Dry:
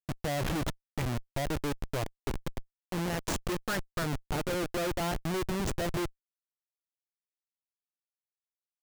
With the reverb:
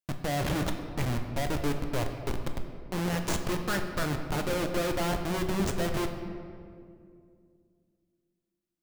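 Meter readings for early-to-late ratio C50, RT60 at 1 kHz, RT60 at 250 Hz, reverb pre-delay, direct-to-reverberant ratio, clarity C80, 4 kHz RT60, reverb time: 7.0 dB, 2.0 s, 3.2 s, 9 ms, 4.5 dB, 8.0 dB, 1.3 s, 2.3 s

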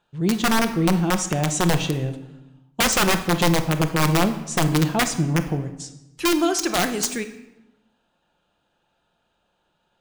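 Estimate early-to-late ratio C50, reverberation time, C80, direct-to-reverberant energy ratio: 11.5 dB, 0.95 s, 14.0 dB, 7.0 dB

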